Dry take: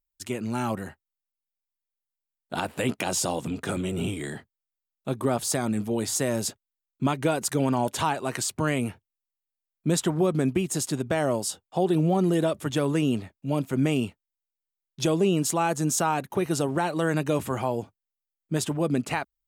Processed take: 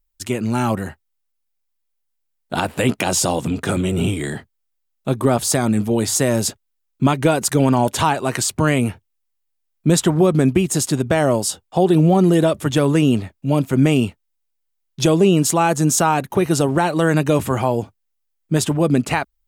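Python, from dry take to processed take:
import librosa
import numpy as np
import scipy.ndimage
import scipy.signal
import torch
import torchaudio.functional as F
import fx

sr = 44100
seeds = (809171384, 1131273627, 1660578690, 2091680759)

y = fx.low_shelf(x, sr, hz=68.0, db=10.5)
y = F.gain(torch.from_numpy(y), 8.0).numpy()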